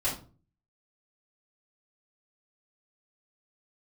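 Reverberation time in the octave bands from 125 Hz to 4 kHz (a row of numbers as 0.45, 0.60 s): 0.65, 0.55, 0.40, 0.35, 0.25, 0.25 s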